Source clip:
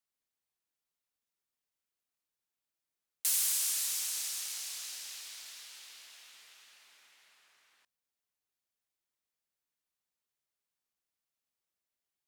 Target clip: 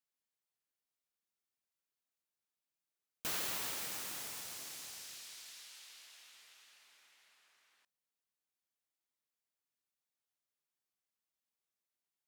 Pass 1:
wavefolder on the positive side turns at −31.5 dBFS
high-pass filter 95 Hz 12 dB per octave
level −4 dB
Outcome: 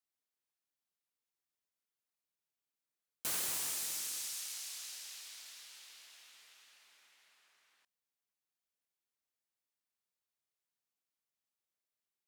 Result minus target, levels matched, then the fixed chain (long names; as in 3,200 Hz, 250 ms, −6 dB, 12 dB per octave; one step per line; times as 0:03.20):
wavefolder on the positive side: distortion −14 dB
wavefolder on the positive side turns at −43 dBFS
high-pass filter 95 Hz 12 dB per octave
level −4 dB